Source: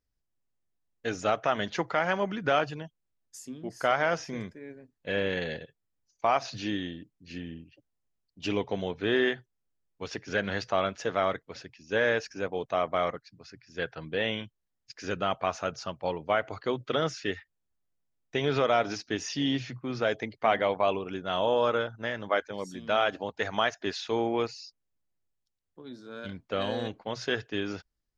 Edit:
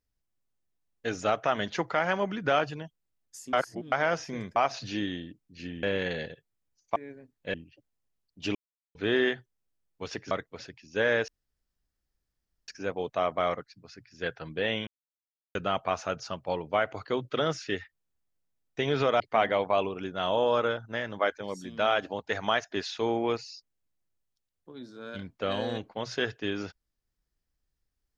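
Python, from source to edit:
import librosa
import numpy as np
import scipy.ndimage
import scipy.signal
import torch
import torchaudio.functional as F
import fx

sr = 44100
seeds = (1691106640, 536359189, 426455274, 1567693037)

y = fx.edit(x, sr, fx.reverse_span(start_s=3.53, length_s=0.39),
    fx.swap(start_s=4.56, length_s=0.58, other_s=6.27, other_length_s=1.27),
    fx.silence(start_s=8.55, length_s=0.4),
    fx.cut(start_s=10.31, length_s=0.96),
    fx.insert_room_tone(at_s=12.24, length_s=1.4),
    fx.silence(start_s=14.43, length_s=0.68),
    fx.cut(start_s=18.76, length_s=1.54), tone=tone)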